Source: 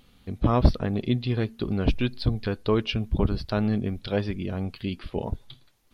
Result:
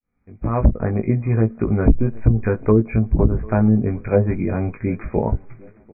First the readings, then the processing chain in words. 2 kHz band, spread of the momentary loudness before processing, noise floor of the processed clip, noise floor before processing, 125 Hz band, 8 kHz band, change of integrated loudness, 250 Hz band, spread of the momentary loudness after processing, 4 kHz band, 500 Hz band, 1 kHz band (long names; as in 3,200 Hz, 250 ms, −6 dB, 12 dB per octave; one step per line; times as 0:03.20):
+3.0 dB, 9 LU, −55 dBFS, −59 dBFS, +8.0 dB, can't be measured, +7.0 dB, +7.0 dB, 7 LU, below −40 dB, +7.5 dB, +4.0 dB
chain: fade in at the beginning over 0.89 s
automatic gain control gain up to 8.5 dB
linear-phase brick-wall low-pass 2,500 Hz
double-tracking delay 18 ms −4 dB
tape delay 748 ms, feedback 50%, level −22.5 dB, low-pass 1,300 Hz
treble cut that deepens with the level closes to 420 Hz, closed at −9 dBFS